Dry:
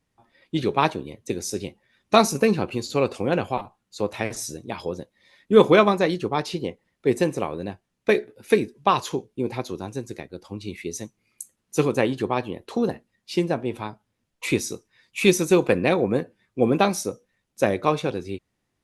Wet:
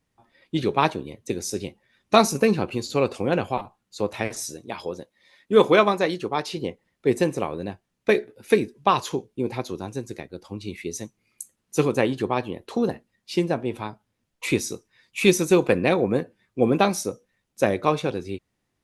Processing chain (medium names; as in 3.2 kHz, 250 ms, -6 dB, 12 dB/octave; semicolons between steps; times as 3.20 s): 4.28–6.57 s: bass shelf 210 Hz -8.5 dB